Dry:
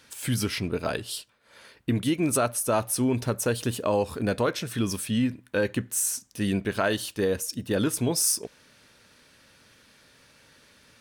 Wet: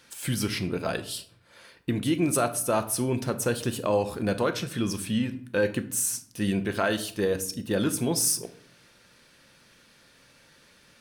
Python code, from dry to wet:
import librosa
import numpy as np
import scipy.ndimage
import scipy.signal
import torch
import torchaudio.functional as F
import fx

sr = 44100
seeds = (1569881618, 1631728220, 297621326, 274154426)

y = fx.high_shelf(x, sr, hz=12000.0, db=-7.0, at=(4.65, 5.24))
y = fx.room_shoebox(y, sr, seeds[0], volume_m3=850.0, walls='furnished', distance_m=0.85)
y = y * 10.0 ** (-1.0 / 20.0)